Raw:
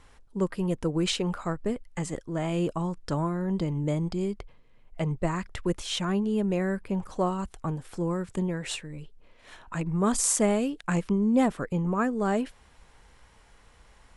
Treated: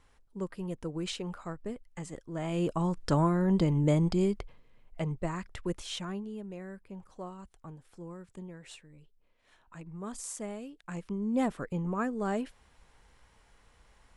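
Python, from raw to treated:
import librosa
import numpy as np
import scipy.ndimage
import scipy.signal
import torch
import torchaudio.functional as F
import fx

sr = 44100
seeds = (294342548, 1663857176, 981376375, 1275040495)

y = fx.gain(x, sr, db=fx.line((2.15, -9.0), (3.0, 2.5), (4.2, 2.5), (5.25, -6.0), (5.87, -6.0), (6.44, -15.5), (10.76, -15.5), (11.44, -5.5)))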